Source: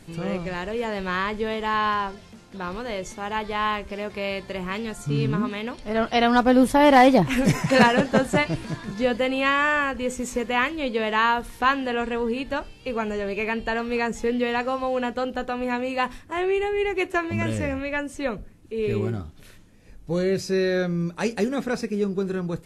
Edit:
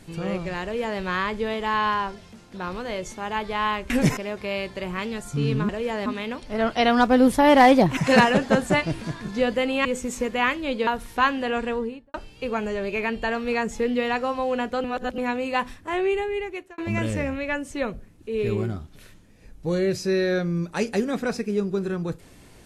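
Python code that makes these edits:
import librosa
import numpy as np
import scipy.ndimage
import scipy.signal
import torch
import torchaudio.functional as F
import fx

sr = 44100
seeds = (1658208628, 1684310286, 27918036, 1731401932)

y = fx.studio_fade_out(x, sr, start_s=12.11, length_s=0.47)
y = fx.edit(y, sr, fx.duplicate(start_s=0.63, length_s=0.37, to_s=5.42),
    fx.move(start_s=7.33, length_s=0.27, to_s=3.9),
    fx.cut(start_s=9.48, length_s=0.52),
    fx.cut(start_s=11.02, length_s=0.29),
    fx.reverse_span(start_s=15.28, length_s=0.34),
    fx.fade_out_span(start_s=16.56, length_s=0.66), tone=tone)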